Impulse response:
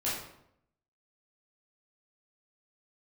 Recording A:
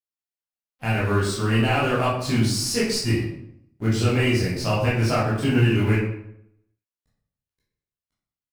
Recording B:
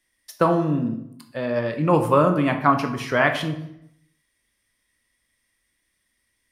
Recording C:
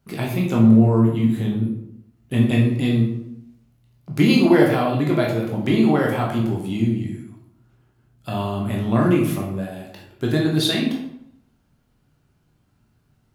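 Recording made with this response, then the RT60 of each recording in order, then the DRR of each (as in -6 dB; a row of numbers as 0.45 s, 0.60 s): A; 0.75 s, 0.75 s, 0.75 s; -9.0 dB, 5.0 dB, -2.5 dB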